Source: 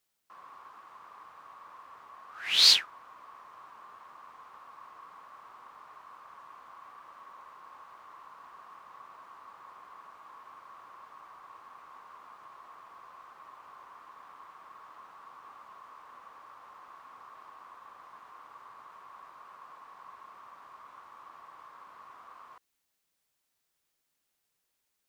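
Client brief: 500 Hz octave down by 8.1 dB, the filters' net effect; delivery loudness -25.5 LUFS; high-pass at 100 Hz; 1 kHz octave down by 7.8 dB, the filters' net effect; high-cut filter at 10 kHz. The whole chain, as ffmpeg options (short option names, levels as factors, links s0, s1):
-af "highpass=100,lowpass=10000,equalizer=f=500:t=o:g=-8,equalizer=f=1000:t=o:g=-7.5,volume=0.631"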